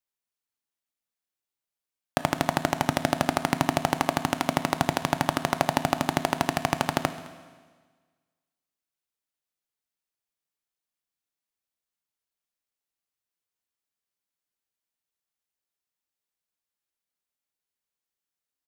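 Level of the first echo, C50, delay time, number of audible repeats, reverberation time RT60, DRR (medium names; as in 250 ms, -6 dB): -21.5 dB, 12.0 dB, 212 ms, 1, 1.5 s, 10.5 dB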